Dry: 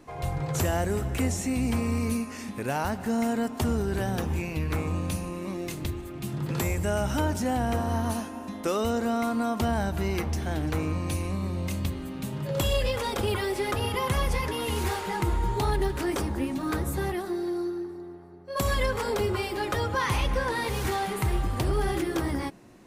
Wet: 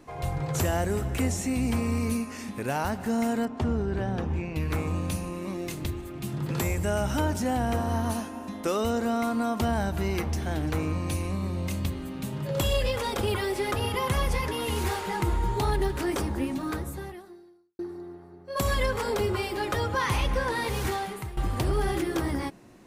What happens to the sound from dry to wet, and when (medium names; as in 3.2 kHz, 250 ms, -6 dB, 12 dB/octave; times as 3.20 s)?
3.45–4.56 s: tape spacing loss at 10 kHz 20 dB
16.54–17.79 s: fade out quadratic
20.85–21.37 s: fade out, to -17 dB